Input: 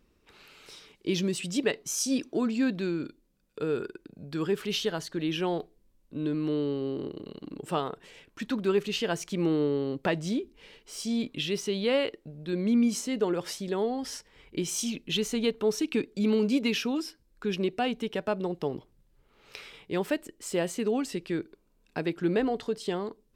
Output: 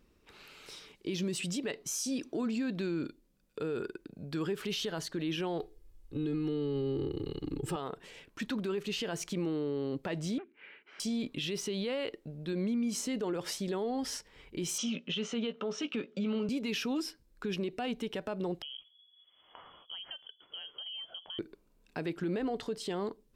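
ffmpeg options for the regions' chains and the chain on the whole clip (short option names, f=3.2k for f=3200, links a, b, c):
-filter_complex "[0:a]asettb=1/sr,asplit=3[a][b][c];[a]atrim=end=5.604[d];[b]atrim=start=5.6:end=7.76,asetpts=PTS-STARTPTS,afade=t=in:d=0.004:c=qsin,afade=t=out:st=2.156:d=0.004:c=qsin,aecho=1:1:2.4:0.92,atrim=end_sample=95256,asubboost=boost=7:cutoff=240[e];[c]atrim=start=7.756[f];[d][e]acrossfade=d=0.004:c1=hsin:c2=qsin[g];[g][f]acrossfade=d=0.004:c1=qsin:c2=hsin,asettb=1/sr,asplit=3[h][i][j];[h]atrim=end=10.384[k];[i]atrim=start=10.38:end=11,asetpts=PTS-STARTPTS,afade=t=in:d=0.004:c=qsin,afade=t=out:st=0.616:d=0.004:c=qsin,aeval=exprs='clip(val(0),-1,0.00668)':c=same,highpass=380,equalizer=f=480:t=q:w=4:g=-9,equalizer=f=690:t=q:w=4:g=-6,equalizer=f=990:t=q:w=4:g=-5,equalizer=f=1.5k:t=q:w=4:g=8,equalizer=f=2.3k:t=q:w=4:g=5,lowpass=f=2.5k:w=0.5412,lowpass=f=2.5k:w=1.3066[l];[j]atrim=start=10.996[m];[k][l]acrossfade=d=0.004:c1=hsin:c2=qsin[n];[n][m]acrossfade=d=0.004:c1=qsin:c2=hsin,asettb=1/sr,asplit=3[o][p][q];[o]atrim=end=14.784[r];[p]atrim=start=14.78:end=16.49,asetpts=PTS-STARTPTS,afade=t=in:d=0.004:c=qsin,afade=t=out:st=1.706:d=0.004:c=qsin,highpass=f=150:w=0.5412,highpass=f=150:w=1.3066,equalizer=f=210:t=q:w=4:g=4,equalizer=f=330:t=q:w=4:g=-8,equalizer=f=560:t=q:w=4:g=9,equalizer=f=1.3k:t=q:w=4:g=9,equalizer=f=3k:t=q:w=4:g=7,equalizer=f=4.4k:t=q:w=4:g=-7,lowpass=f=5.8k:w=0.5412,lowpass=f=5.8k:w=1.3066,asplit=2[s][t];[t]adelay=17,volume=-10dB[u];[s][u]amix=inputs=2:normalize=0,atrim=end_sample=75411[v];[q]atrim=start=16.486[w];[r][v]acrossfade=d=0.004:c1=hsin:c2=qsin[x];[x][w]acrossfade=d=0.004:c1=qsin:c2=hsin,asettb=1/sr,asplit=3[y][z][aa];[y]atrim=end=18.624[ab];[z]atrim=start=18.62:end=21.39,asetpts=PTS-STARTPTS,afade=t=in:d=0.004:c=qsin,afade=t=out:st=2.766:d=0.004:c=qsin,equalizer=f=930:w=0.61:g=-13.5,acompressor=threshold=-39dB:ratio=12:attack=3.2:release=140:knee=1:detection=peak,lowpass=f=2.9k:t=q:w=0.5098,lowpass=f=2.9k:t=q:w=0.6013,lowpass=f=2.9k:t=q:w=0.9,lowpass=f=2.9k:t=q:w=2.563,afreqshift=-3400[ac];[aa]atrim=start=21.386[ad];[ab][ac]acrossfade=d=0.004:c1=hsin:c2=qsin[ae];[ae][ad]acrossfade=d=0.004:c1=qsin:c2=hsin,acompressor=threshold=-27dB:ratio=6,alimiter=level_in=2.5dB:limit=-24dB:level=0:latency=1:release=25,volume=-2.5dB"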